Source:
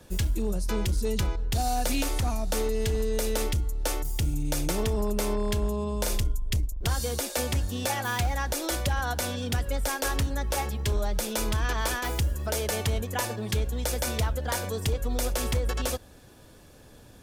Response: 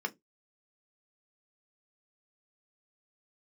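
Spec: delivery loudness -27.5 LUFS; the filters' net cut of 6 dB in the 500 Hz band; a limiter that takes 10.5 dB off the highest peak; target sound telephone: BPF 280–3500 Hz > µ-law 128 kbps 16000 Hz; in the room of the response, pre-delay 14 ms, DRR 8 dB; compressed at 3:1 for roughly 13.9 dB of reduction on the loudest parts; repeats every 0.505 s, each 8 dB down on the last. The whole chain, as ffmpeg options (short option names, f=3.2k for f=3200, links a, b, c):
-filter_complex "[0:a]equalizer=f=500:t=o:g=-6.5,acompressor=threshold=-42dB:ratio=3,alimiter=level_in=13dB:limit=-24dB:level=0:latency=1,volume=-13dB,aecho=1:1:505|1010|1515|2020|2525:0.398|0.159|0.0637|0.0255|0.0102,asplit=2[a][b];[1:a]atrim=start_sample=2205,adelay=14[c];[b][c]afir=irnorm=-1:irlink=0,volume=-12dB[d];[a][d]amix=inputs=2:normalize=0,highpass=280,lowpass=3.5k,volume=23.5dB" -ar 16000 -c:a pcm_mulaw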